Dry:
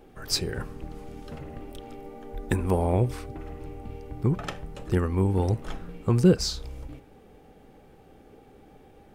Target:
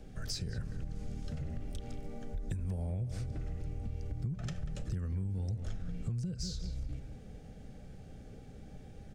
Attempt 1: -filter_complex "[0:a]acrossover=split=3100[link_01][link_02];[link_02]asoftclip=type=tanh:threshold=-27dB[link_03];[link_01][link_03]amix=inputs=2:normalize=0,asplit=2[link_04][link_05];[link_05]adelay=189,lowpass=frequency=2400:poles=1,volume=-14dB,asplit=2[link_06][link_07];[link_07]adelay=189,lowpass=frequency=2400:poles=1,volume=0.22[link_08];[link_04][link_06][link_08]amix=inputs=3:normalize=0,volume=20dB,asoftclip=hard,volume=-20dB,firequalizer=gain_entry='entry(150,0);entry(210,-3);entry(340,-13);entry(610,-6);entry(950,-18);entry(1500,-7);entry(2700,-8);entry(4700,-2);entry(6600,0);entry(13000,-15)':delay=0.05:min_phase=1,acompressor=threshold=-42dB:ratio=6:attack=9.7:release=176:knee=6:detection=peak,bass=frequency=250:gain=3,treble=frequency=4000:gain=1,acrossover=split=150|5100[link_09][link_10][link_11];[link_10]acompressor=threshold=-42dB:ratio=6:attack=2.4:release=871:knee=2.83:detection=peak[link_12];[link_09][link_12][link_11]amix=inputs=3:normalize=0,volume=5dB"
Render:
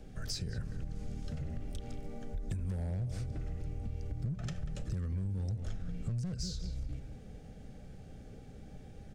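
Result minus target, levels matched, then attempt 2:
gain into a clipping stage and back: distortion +31 dB
-filter_complex "[0:a]acrossover=split=3100[link_01][link_02];[link_02]asoftclip=type=tanh:threshold=-27dB[link_03];[link_01][link_03]amix=inputs=2:normalize=0,asplit=2[link_04][link_05];[link_05]adelay=189,lowpass=frequency=2400:poles=1,volume=-14dB,asplit=2[link_06][link_07];[link_07]adelay=189,lowpass=frequency=2400:poles=1,volume=0.22[link_08];[link_04][link_06][link_08]amix=inputs=3:normalize=0,volume=9dB,asoftclip=hard,volume=-9dB,firequalizer=gain_entry='entry(150,0);entry(210,-3);entry(340,-13);entry(610,-6);entry(950,-18);entry(1500,-7);entry(2700,-8);entry(4700,-2);entry(6600,0);entry(13000,-15)':delay=0.05:min_phase=1,acompressor=threshold=-42dB:ratio=6:attack=9.7:release=176:knee=6:detection=peak,bass=frequency=250:gain=3,treble=frequency=4000:gain=1,acrossover=split=150|5100[link_09][link_10][link_11];[link_10]acompressor=threshold=-42dB:ratio=6:attack=2.4:release=871:knee=2.83:detection=peak[link_12];[link_09][link_12][link_11]amix=inputs=3:normalize=0,volume=5dB"

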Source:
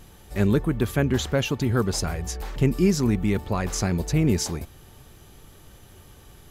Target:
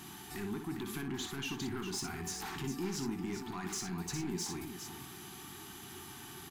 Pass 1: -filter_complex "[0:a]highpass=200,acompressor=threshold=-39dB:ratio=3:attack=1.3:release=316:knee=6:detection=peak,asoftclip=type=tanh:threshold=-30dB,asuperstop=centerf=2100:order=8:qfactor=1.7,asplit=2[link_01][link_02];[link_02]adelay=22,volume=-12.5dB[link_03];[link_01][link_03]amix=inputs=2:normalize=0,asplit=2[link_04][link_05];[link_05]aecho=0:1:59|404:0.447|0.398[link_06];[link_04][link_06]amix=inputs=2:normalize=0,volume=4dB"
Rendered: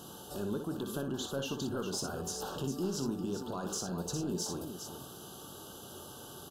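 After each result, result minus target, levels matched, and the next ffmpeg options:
2,000 Hz band −6.5 dB; soft clipping: distortion −9 dB
-filter_complex "[0:a]highpass=200,acompressor=threshold=-39dB:ratio=3:attack=1.3:release=316:knee=6:detection=peak,asoftclip=type=tanh:threshold=-30dB,asuperstop=centerf=540:order=8:qfactor=1.7,asplit=2[link_01][link_02];[link_02]adelay=22,volume=-12.5dB[link_03];[link_01][link_03]amix=inputs=2:normalize=0,asplit=2[link_04][link_05];[link_05]aecho=0:1:59|404:0.447|0.398[link_06];[link_04][link_06]amix=inputs=2:normalize=0,volume=4dB"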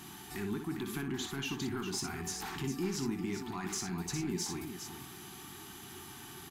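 soft clipping: distortion −9 dB
-filter_complex "[0:a]highpass=200,acompressor=threshold=-39dB:ratio=3:attack=1.3:release=316:knee=6:detection=peak,asoftclip=type=tanh:threshold=-36.5dB,asuperstop=centerf=540:order=8:qfactor=1.7,asplit=2[link_01][link_02];[link_02]adelay=22,volume=-12.5dB[link_03];[link_01][link_03]amix=inputs=2:normalize=0,asplit=2[link_04][link_05];[link_05]aecho=0:1:59|404:0.447|0.398[link_06];[link_04][link_06]amix=inputs=2:normalize=0,volume=4dB"

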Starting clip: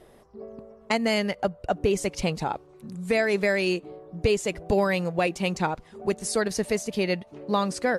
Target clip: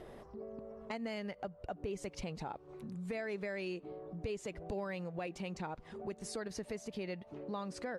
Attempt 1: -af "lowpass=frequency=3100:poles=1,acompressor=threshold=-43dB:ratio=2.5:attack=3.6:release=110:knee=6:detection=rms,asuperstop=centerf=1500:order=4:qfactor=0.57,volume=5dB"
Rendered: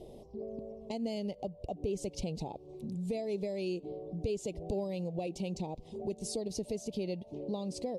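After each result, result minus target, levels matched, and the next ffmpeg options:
2,000 Hz band −13.0 dB; downward compressor: peak gain reduction −5.5 dB
-af "lowpass=frequency=3100:poles=1,acompressor=threshold=-43dB:ratio=2.5:attack=3.6:release=110:knee=6:detection=rms,volume=5dB"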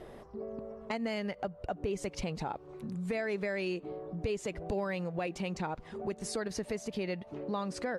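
downward compressor: peak gain reduction −5.5 dB
-af "lowpass=frequency=3100:poles=1,acompressor=threshold=-52.5dB:ratio=2.5:attack=3.6:release=110:knee=6:detection=rms,volume=5dB"

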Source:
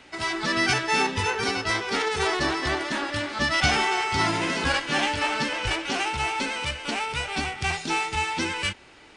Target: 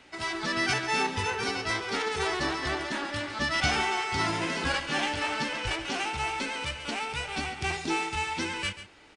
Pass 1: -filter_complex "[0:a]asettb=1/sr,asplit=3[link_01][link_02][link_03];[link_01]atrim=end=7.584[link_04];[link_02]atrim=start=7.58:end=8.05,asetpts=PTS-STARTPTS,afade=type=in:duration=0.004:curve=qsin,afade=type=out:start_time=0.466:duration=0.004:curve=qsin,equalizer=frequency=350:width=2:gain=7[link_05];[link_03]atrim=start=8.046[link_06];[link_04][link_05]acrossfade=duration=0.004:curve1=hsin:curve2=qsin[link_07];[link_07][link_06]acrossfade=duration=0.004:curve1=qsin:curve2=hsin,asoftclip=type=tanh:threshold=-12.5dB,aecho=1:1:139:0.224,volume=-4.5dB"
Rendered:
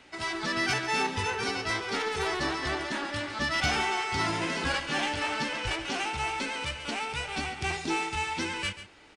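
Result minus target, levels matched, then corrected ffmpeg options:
soft clipping: distortion +20 dB
-filter_complex "[0:a]asettb=1/sr,asplit=3[link_01][link_02][link_03];[link_01]atrim=end=7.584[link_04];[link_02]atrim=start=7.58:end=8.05,asetpts=PTS-STARTPTS,afade=type=in:duration=0.004:curve=qsin,afade=type=out:start_time=0.466:duration=0.004:curve=qsin,equalizer=frequency=350:width=2:gain=7[link_05];[link_03]atrim=start=8.046[link_06];[link_04][link_05]acrossfade=duration=0.004:curve1=hsin:curve2=qsin[link_07];[link_07][link_06]acrossfade=duration=0.004:curve1=qsin:curve2=hsin,asoftclip=type=tanh:threshold=-1.5dB,aecho=1:1:139:0.224,volume=-4.5dB"

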